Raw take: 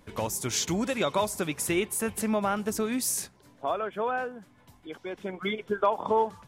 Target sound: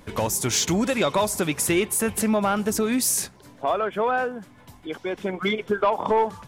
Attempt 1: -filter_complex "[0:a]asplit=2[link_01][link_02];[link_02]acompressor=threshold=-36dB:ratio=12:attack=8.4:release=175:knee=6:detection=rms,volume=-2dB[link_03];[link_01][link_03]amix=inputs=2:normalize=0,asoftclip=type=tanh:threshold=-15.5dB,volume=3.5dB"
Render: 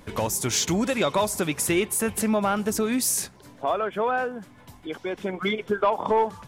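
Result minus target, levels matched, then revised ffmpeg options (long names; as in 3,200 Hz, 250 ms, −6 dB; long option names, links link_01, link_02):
downward compressor: peak gain reduction +8 dB
-filter_complex "[0:a]asplit=2[link_01][link_02];[link_02]acompressor=threshold=-27.5dB:ratio=12:attack=8.4:release=175:knee=6:detection=rms,volume=-2dB[link_03];[link_01][link_03]amix=inputs=2:normalize=0,asoftclip=type=tanh:threshold=-15.5dB,volume=3.5dB"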